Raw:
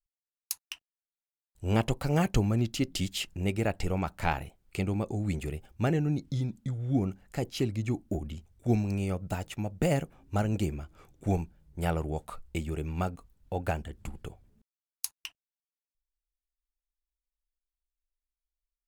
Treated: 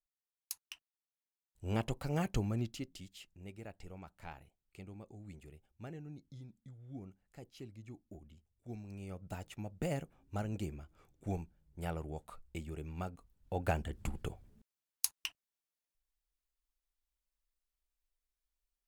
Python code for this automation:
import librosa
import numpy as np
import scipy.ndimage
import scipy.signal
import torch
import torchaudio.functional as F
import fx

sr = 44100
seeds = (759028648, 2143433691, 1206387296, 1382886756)

y = fx.gain(x, sr, db=fx.line((2.63, -8.5), (3.03, -20.0), (8.74, -20.0), (9.37, -10.0), (13.12, -10.0), (13.97, 1.0)))